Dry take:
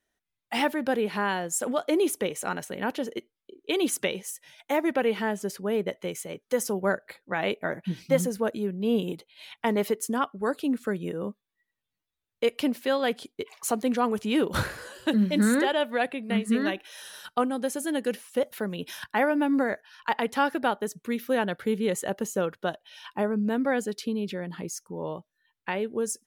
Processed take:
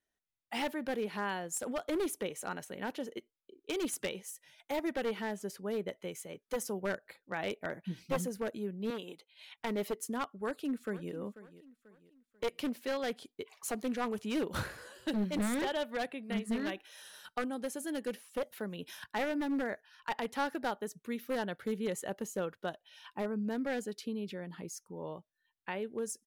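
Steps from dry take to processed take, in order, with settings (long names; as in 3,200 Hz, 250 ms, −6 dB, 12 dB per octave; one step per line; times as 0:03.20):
wavefolder on the positive side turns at −20.5 dBFS
0:08.90–0:09.57: meter weighting curve A
0:10.43–0:11.12: delay throw 490 ms, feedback 40%, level −16 dB
level −8.5 dB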